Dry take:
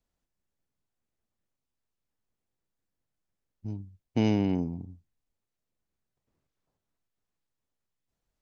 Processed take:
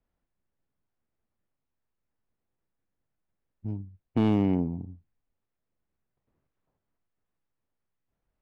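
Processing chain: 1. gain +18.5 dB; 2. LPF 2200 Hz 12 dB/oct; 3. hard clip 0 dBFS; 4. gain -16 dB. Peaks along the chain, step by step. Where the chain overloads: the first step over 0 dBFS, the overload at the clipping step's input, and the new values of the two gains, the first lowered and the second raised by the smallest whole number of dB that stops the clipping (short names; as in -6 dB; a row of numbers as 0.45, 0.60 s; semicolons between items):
+4.5, +4.5, 0.0, -16.0 dBFS; step 1, 4.5 dB; step 1 +13.5 dB, step 4 -11 dB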